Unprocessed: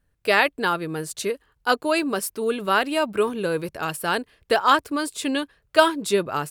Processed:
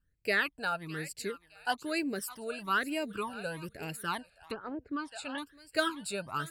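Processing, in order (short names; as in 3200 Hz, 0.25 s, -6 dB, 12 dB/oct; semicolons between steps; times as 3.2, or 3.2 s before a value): thinning echo 0.611 s, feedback 30%, high-pass 1100 Hz, level -13.5 dB; 4.19–5.38 treble ducked by the level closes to 390 Hz, closed at -13.5 dBFS; phaser stages 12, 1.1 Hz, lowest notch 330–1200 Hz; gain -7.5 dB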